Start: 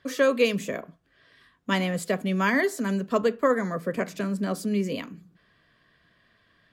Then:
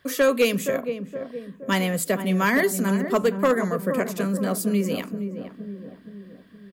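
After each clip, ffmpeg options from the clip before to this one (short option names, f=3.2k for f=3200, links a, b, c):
-filter_complex "[0:a]acrossover=split=7400[a][b];[b]crystalizer=i=2:c=0[c];[a][c]amix=inputs=2:normalize=0,asplit=2[d][e];[e]adelay=469,lowpass=f=810:p=1,volume=-7.5dB,asplit=2[f][g];[g]adelay=469,lowpass=f=810:p=1,volume=0.55,asplit=2[h][i];[i]adelay=469,lowpass=f=810:p=1,volume=0.55,asplit=2[j][k];[k]adelay=469,lowpass=f=810:p=1,volume=0.55,asplit=2[l][m];[m]adelay=469,lowpass=f=810:p=1,volume=0.55,asplit=2[n][o];[o]adelay=469,lowpass=f=810:p=1,volume=0.55,asplit=2[p][q];[q]adelay=469,lowpass=f=810:p=1,volume=0.55[r];[d][f][h][j][l][n][p][r]amix=inputs=8:normalize=0,volume=15dB,asoftclip=hard,volume=-15dB,volume=2.5dB"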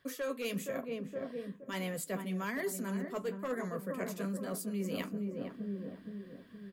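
-af "areverse,acompressor=threshold=-30dB:ratio=10,areverse,flanger=delay=7.2:depth=4.2:regen=-45:speed=1.1:shape=sinusoidal"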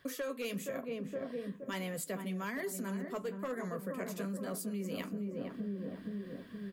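-af "acompressor=threshold=-42dB:ratio=4,volume=5.5dB"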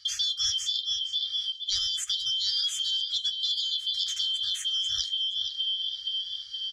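-af "afftfilt=real='real(if(lt(b,272),68*(eq(floor(b/68),0)*2+eq(floor(b/68),1)*3+eq(floor(b/68),2)*0+eq(floor(b/68),3)*1)+mod(b,68),b),0)':imag='imag(if(lt(b,272),68*(eq(floor(b/68),0)*2+eq(floor(b/68),1)*3+eq(floor(b/68),2)*0+eq(floor(b/68),3)*1)+mod(b,68),b),0)':win_size=2048:overlap=0.75,lowpass=f=6.2k:t=q:w=3.8,afftfilt=real='re*(1-between(b*sr/4096,120,1200))':imag='im*(1-between(b*sr/4096,120,1200))':win_size=4096:overlap=0.75,volume=6.5dB"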